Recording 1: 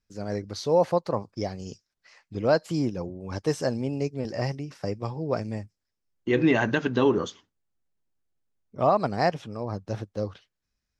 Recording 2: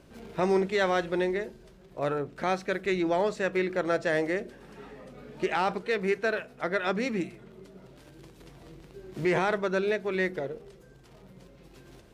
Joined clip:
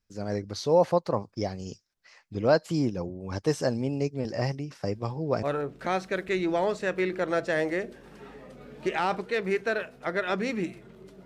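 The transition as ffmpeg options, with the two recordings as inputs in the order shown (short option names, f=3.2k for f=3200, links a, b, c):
-filter_complex "[1:a]asplit=2[a][b];[0:a]apad=whole_dur=11.25,atrim=end=11.25,atrim=end=5.432[c];[b]atrim=start=1.998:end=7.82[d];[a]atrim=start=1.5:end=2,asetpts=PTS-STARTPTS,volume=-11dB,afade=t=in:d=0.004:c=hsin,afade=t=out:st=0.496:d=0.004:c=hsin,adelay=217413S[e];[c][d]acrossfade=d=0.004:c1=hsin:c2=hsin[f];[f][e]amix=inputs=2:normalize=0"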